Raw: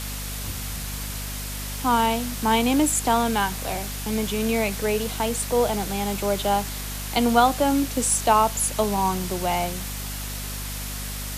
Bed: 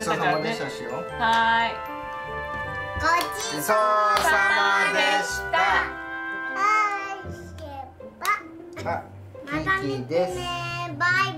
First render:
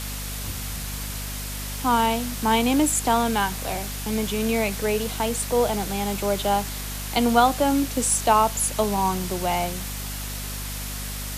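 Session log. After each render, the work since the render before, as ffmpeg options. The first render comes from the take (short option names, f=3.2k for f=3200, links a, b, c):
-af anull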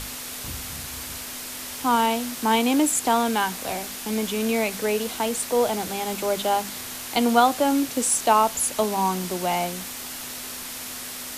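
-af "bandreject=f=50:t=h:w=6,bandreject=f=100:t=h:w=6,bandreject=f=150:t=h:w=6,bandreject=f=200:t=h:w=6"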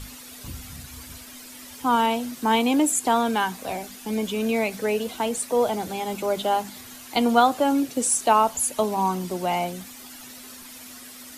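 -af "afftdn=nr=11:nf=-35"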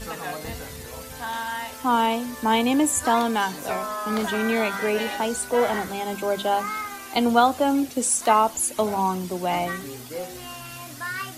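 -filter_complex "[1:a]volume=-10dB[a];[0:a][a]amix=inputs=2:normalize=0"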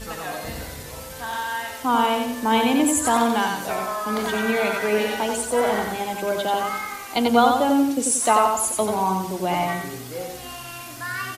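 -af "aecho=1:1:90|180|270|360|450:0.631|0.246|0.096|0.0374|0.0146"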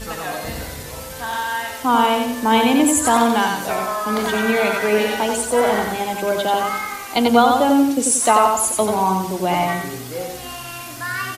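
-af "volume=4dB,alimiter=limit=-3dB:level=0:latency=1"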